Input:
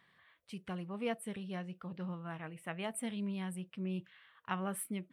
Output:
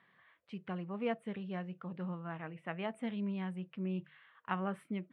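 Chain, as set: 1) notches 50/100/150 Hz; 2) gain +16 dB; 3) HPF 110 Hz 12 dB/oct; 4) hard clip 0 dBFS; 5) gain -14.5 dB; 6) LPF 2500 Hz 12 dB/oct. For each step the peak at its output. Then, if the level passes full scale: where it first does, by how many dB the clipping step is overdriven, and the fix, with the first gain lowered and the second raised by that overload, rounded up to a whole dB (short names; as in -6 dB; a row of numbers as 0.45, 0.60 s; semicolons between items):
-21.5, -5.5, -4.5, -4.5, -19.0, -20.0 dBFS; no overload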